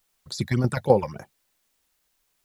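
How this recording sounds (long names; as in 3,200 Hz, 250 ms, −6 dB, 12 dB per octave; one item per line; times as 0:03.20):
phaser sweep stages 8, 3.5 Hz, lowest notch 350–3,000 Hz
tremolo saw down 7.8 Hz, depth 65%
a quantiser's noise floor 12 bits, dither triangular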